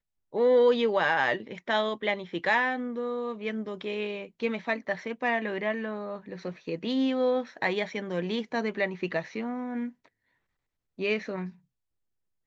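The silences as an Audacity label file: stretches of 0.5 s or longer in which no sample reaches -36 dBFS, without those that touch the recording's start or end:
9.890000	10.990000	silence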